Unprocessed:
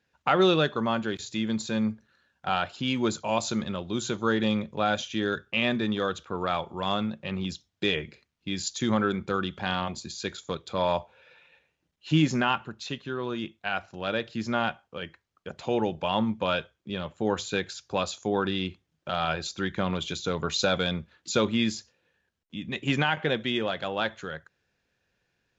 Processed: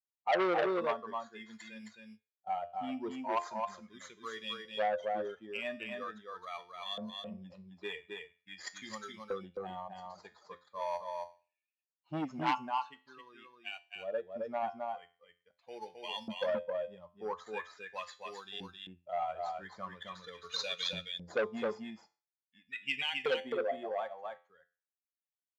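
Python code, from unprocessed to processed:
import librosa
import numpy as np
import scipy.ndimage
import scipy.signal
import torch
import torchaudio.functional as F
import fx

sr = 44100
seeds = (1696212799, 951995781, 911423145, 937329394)

p1 = fx.bin_expand(x, sr, power=2.0)
p2 = fx.peak_eq(p1, sr, hz=1500.0, db=-14.0, octaves=0.35)
p3 = fx.comb_fb(p2, sr, f0_hz=87.0, decay_s=0.36, harmonics='all', damping=0.0, mix_pct=60)
p4 = fx.sample_hold(p3, sr, seeds[0], rate_hz=5200.0, jitter_pct=0)
p5 = p3 + (p4 * librosa.db_to_amplitude(-10.0))
p6 = fx.filter_lfo_bandpass(p5, sr, shape='saw_up', hz=0.43, low_hz=460.0, high_hz=3300.0, q=1.9)
p7 = p6 + fx.echo_single(p6, sr, ms=265, db=-4.0, dry=0)
p8 = fx.transformer_sat(p7, sr, knee_hz=1700.0)
y = p8 * librosa.db_to_amplitude(8.5)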